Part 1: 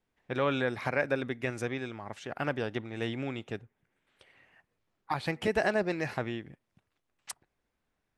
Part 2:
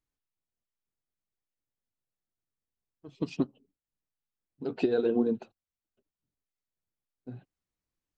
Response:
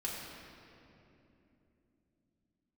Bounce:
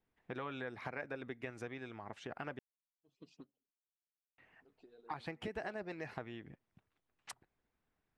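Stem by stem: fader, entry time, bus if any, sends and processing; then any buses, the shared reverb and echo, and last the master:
-0.5 dB, 0.00 s, muted 2.59–4.38, no send, high shelf 5100 Hz -11.5 dB; notch 560 Hz, Q 12; harmonic-percussive split harmonic -5 dB
-16.5 dB, 0.00 s, no send, low shelf 450 Hz -9.5 dB; LFO notch saw up 4.7 Hz 550–4600 Hz; auto duck -13 dB, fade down 1.20 s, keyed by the first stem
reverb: off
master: compressor 2.5:1, threshold -44 dBFS, peak gain reduction 11.5 dB

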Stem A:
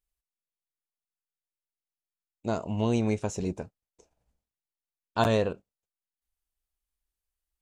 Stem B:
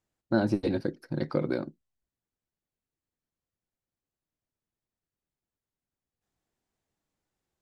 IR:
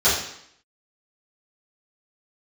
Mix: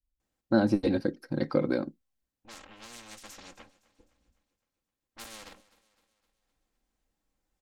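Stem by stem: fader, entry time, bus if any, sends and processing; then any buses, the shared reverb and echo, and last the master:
-16.5 dB, 0.00 s, no send, echo send -20.5 dB, minimum comb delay 3.6 ms; low-pass opened by the level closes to 300 Hz, open at -28.5 dBFS; spectral compressor 4:1
+1.0 dB, 0.20 s, no send, no echo send, dry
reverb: off
echo: feedback echo 0.257 s, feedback 52%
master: comb 3.8 ms, depth 34%

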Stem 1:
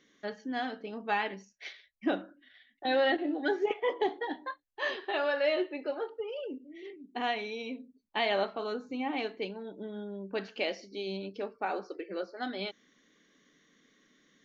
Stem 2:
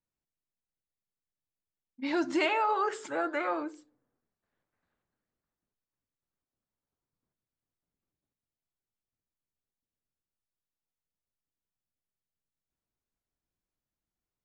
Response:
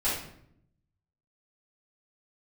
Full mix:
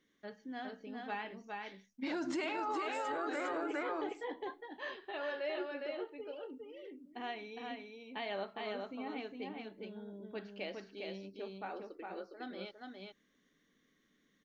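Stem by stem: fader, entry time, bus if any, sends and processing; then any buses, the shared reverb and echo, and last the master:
-10.5 dB, 0.00 s, no send, echo send -3.5 dB, tone controls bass +4 dB, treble -3 dB
-0.5 dB, 0.00 s, no send, echo send -3.5 dB, dry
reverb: off
echo: echo 0.409 s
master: limiter -29.5 dBFS, peak gain reduction 13 dB

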